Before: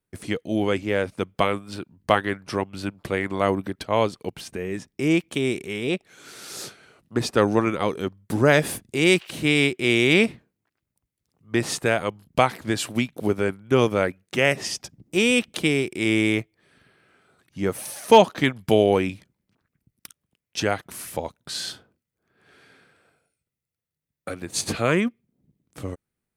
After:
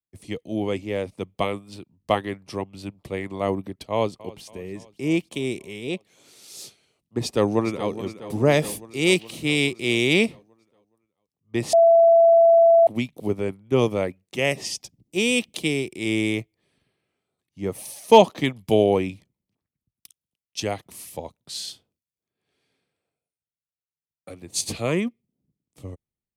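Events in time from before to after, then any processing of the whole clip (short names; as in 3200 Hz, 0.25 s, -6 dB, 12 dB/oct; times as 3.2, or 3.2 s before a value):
3.91–4.44 echo throw 0.28 s, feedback 70%, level -17.5 dB
7.22–7.9 echo throw 0.42 s, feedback 65%, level -10.5 dB
11.73–12.87 bleep 669 Hz -10 dBFS
whole clip: bell 1500 Hz -13.5 dB 0.47 oct; three-band expander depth 40%; gain -2 dB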